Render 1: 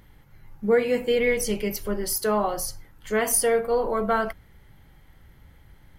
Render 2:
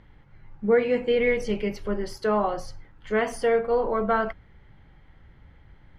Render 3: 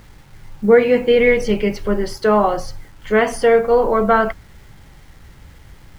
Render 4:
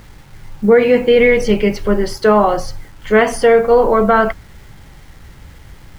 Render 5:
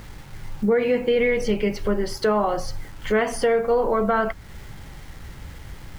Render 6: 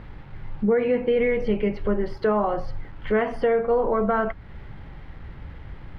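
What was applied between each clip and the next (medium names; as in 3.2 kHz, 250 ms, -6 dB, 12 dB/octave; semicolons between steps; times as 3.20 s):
low-pass 3.1 kHz 12 dB/octave
word length cut 10-bit, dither none; trim +9 dB
loudness maximiser +5 dB; trim -1 dB
compression 2:1, threshold -25 dBFS, peak gain reduction 10.5 dB
distance through air 400 m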